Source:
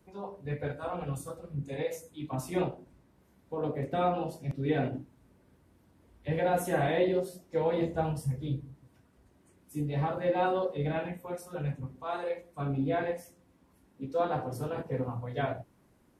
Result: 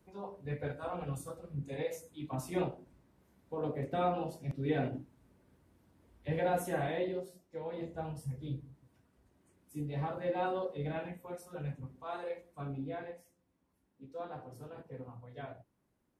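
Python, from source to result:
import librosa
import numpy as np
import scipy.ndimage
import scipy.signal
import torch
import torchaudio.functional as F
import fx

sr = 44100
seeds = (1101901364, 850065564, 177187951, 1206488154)

y = fx.gain(x, sr, db=fx.line((6.49, -3.5), (7.6, -13.0), (8.52, -6.0), (12.5, -6.0), (13.14, -13.5)))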